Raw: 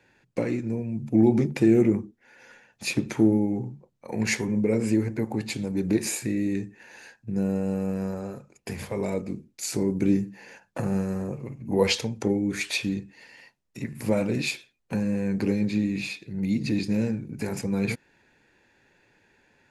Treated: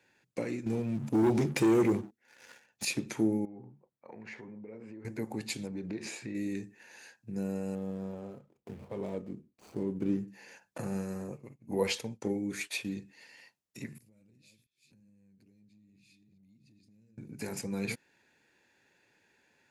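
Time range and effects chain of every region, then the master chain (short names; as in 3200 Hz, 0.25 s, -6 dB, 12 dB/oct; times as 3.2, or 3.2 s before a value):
0.66–2.85 dynamic EQ 220 Hz, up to -5 dB, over -30 dBFS, Q 2.3 + sample leveller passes 2
3.45–5.05 LPF 1700 Hz + low shelf 360 Hz -6.5 dB + compressor, threshold -35 dBFS
5.67–6.35 LPF 3600 Hz + compressor 2.5:1, threshold -27 dBFS
7.75–10.28 median filter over 25 samples + high shelf 2500 Hz -10.5 dB
10.78–12.98 expander -32 dBFS + dynamic EQ 5000 Hz, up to -7 dB, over -41 dBFS, Q 0.81
13.98–17.18 reverse delay 0.343 s, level -12.5 dB + passive tone stack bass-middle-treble 10-0-1 + compressor 4:1, threshold -53 dBFS
whole clip: HPF 130 Hz 6 dB/oct; high shelf 3600 Hz +7 dB; gain -7.5 dB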